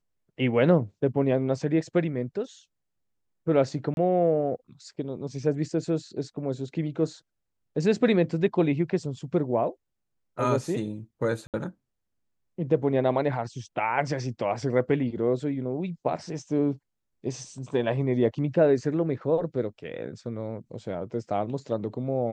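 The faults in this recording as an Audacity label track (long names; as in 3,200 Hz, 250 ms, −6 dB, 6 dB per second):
3.940000	3.970000	drop-out 31 ms
11.470000	11.540000	drop-out 68 ms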